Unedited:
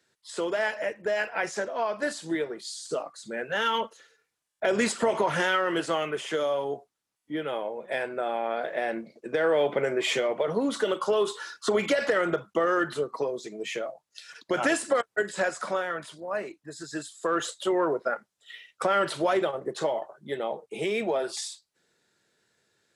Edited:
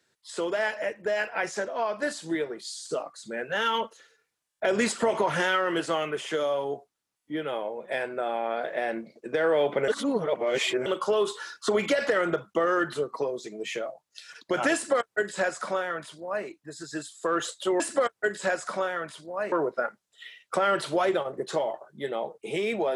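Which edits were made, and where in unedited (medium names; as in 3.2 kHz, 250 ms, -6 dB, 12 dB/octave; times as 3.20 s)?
9.88–10.86 s: reverse
14.74–16.46 s: copy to 17.80 s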